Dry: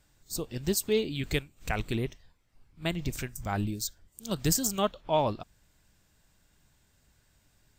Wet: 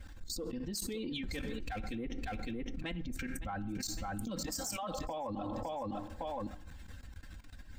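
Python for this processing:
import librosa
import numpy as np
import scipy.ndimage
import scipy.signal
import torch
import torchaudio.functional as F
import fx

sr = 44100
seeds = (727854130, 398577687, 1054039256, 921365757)

y = fx.bin_expand(x, sr, power=1.5)
y = fx.lowpass(y, sr, hz=1800.0, slope=6)
y = fx.power_curve(y, sr, exponent=0.7, at=(1.23, 1.81))
y = y + 0.94 * np.pad(y, (int(3.8 * sr / 1000.0), 0))[:len(y)]
y = fx.level_steps(y, sr, step_db=22)
y = fx.hpss(y, sr, part='harmonic', gain_db=-8)
y = 10.0 ** (-36.5 / 20.0) * np.tanh(y / 10.0 ** (-36.5 / 20.0))
y = fx.ladder_highpass(y, sr, hz=580.0, resonance_pct=55, at=(4.45, 4.92), fade=0.02)
y = fx.echo_feedback(y, sr, ms=559, feedback_pct=18, wet_db=-18.0)
y = fx.rev_plate(y, sr, seeds[0], rt60_s=0.77, hf_ratio=0.5, predelay_ms=0, drr_db=16.5)
y = fx.env_flatten(y, sr, amount_pct=100)
y = F.gain(torch.from_numpy(y), 6.0).numpy()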